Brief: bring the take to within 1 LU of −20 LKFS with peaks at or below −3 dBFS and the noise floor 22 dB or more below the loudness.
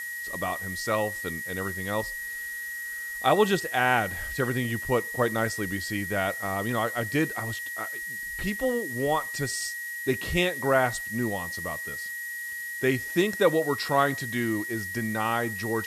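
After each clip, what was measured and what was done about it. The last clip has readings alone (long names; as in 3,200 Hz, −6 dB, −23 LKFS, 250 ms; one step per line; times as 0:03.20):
interfering tone 1,900 Hz; level of the tone −33 dBFS; background noise floor −36 dBFS; target noise floor −50 dBFS; integrated loudness −27.5 LKFS; sample peak −8.0 dBFS; target loudness −20.0 LKFS
→ notch filter 1,900 Hz, Q 30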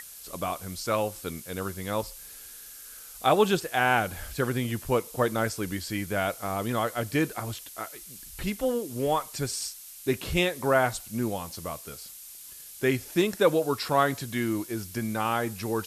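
interfering tone none found; background noise floor −46 dBFS; target noise floor −51 dBFS
→ noise reduction from a noise print 6 dB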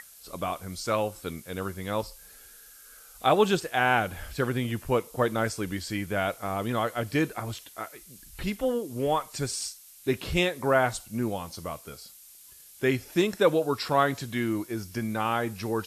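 background noise floor −51 dBFS; integrated loudness −28.5 LKFS; sample peak −8.5 dBFS; target loudness −20.0 LKFS
→ level +8.5 dB
brickwall limiter −3 dBFS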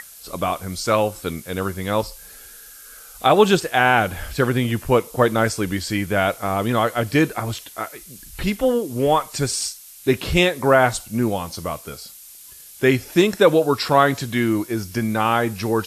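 integrated loudness −20.0 LKFS; sample peak −3.0 dBFS; background noise floor −43 dBFS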